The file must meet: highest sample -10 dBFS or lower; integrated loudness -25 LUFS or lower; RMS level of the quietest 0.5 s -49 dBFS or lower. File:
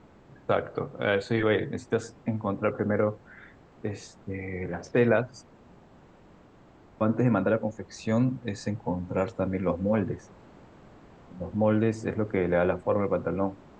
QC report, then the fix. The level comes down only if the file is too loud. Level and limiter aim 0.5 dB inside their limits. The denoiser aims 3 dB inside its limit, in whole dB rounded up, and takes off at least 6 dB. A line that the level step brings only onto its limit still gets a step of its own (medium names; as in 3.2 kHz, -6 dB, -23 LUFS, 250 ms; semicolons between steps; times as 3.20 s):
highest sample -10.5 dBFS: pass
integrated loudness -28.0 LUFS: pass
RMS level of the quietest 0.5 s -55 dBFS: pass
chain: none needed